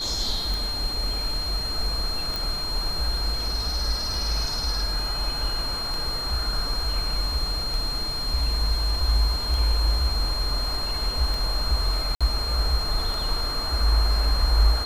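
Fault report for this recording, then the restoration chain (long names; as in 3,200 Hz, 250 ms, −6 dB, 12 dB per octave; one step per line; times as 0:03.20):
scratch tick 33 1/3 rpm
whistle 4,200 Hz −28 dBFS
0:02.36: click
0:12.15–0:12.21: drop-out 56 ms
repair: click removal
notch filter 4,200 Hz, Q 30
repair the gap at 0:12.15, 56 ms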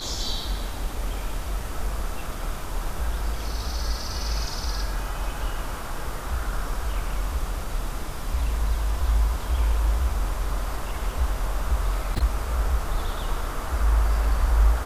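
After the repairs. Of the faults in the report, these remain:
none of them is left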